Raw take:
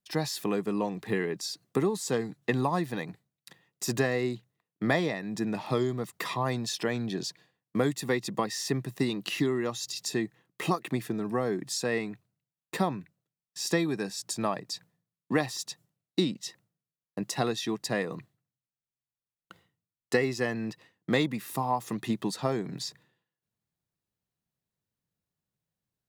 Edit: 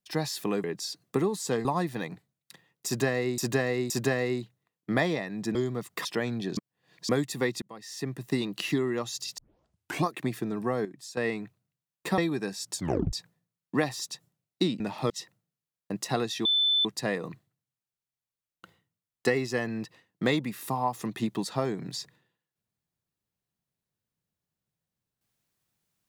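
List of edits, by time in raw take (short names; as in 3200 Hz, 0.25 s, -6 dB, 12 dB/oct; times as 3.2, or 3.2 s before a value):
0.64–1.25 cut
2.26–2.62 cut
3.83–4.35 loop, 3 plays
5.48–5.78 move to 16.37
6.28–6.73 cut
7.25–7.77 reverse
8.3–9.01 fade in
10.06 tape start 0.68 s
11.53–11.85 gain -11 dB
12.86–13.75 cut
14.34 tape stop 0.36 s
17.72 add tone 3520 Hz -21 dBFS 0.40 s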